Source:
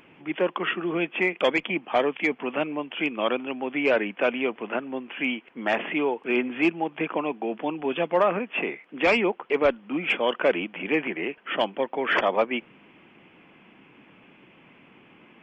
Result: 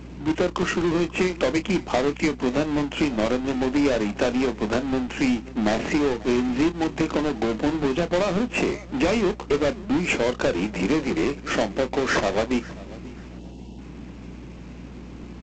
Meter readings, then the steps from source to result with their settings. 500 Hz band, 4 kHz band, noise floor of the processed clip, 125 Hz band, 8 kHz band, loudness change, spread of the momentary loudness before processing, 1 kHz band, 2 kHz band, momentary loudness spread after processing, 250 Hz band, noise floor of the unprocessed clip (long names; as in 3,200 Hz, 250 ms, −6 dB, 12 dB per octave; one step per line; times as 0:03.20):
+1.5 dB, +1.5 dB, −40 dBFS, +12.0 dB, can't be measured, +2.0 dB, 7 LU, −0.5 dB, −2.0 dB, 18 LU, +6.5 dB, −55 dBFS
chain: each half-wave held at its own peak
gain on a spectral selection 0:13.39–0:13.79, 1,000–2,600 Hz −26 dB
low-shelf EQ 400 Hz +11.5 dB
downward compressor 6 to 1, threshold −19 dBFS, peak gain reduction 12 dB
mains hum 60 Hz, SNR 16 dB
double-tracking delay 28 ms −11.5 dB
repeating echo 539 ms, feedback 29%, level −20 dB
G.722 64 kbit/s 16,000 Hz